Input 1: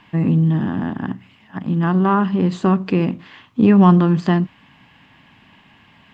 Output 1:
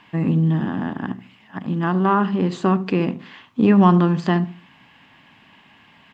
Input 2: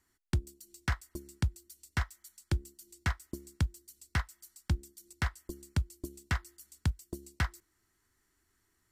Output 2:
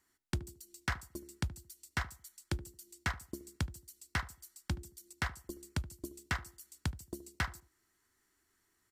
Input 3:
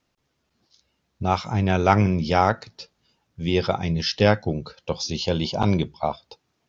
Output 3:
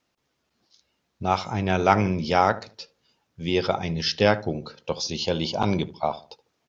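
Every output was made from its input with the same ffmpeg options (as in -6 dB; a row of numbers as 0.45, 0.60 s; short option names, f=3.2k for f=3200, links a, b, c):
-filter_complex "[0:a]lowshelf=f=150:g=-9,asplit=2[a][b];[b]adelay=74,lowpass=f=880:p=1,volume=-14dB,asplit=2[c][d];[d]adelay=74,lowpass=f=880:p=1,volume=0.35,asplit=2[e][f];[f]adelay=74,lowpass=f=880:p=1,volume=0.35[g];[c][e][g]amix=inputs=3:normalize=0[h];[a][h]amix=inputs=2:normalize=0"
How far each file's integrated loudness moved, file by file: -2.5, -4.0, -1.5 LU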